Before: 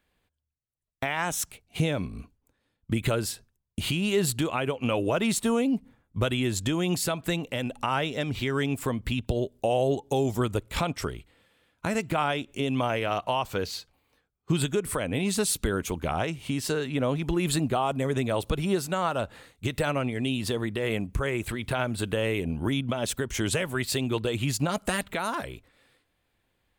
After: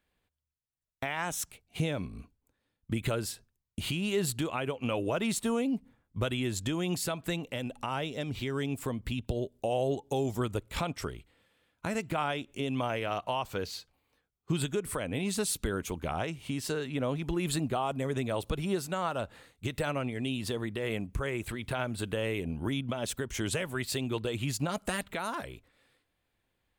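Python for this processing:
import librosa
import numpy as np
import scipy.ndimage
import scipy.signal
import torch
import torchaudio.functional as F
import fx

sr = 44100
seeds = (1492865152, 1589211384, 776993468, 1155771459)

y = fx.dynamic_eq(x, sr, hz=1600.0, q=0.88, threshold_db=-40.0, ratio=4.0, max_db=-4, at=(7.57, 9.72))
y = y * librosa.db_to_amplitude(-5.0)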